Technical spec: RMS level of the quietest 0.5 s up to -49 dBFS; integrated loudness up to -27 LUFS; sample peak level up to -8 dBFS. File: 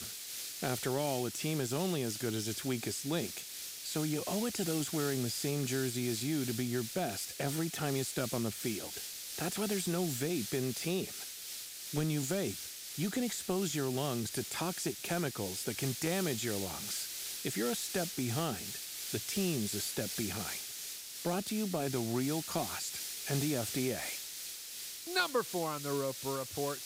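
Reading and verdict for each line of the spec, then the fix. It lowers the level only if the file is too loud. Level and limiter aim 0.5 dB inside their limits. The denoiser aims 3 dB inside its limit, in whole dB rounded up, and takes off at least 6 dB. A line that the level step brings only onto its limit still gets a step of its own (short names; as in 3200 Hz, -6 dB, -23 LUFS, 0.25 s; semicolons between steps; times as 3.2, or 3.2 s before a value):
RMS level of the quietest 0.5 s -45 dBFS: fail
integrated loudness -35.5 LUFS: OK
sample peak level -18.5 dBFS: OK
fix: denoiser 7 dB, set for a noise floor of -45 dBFS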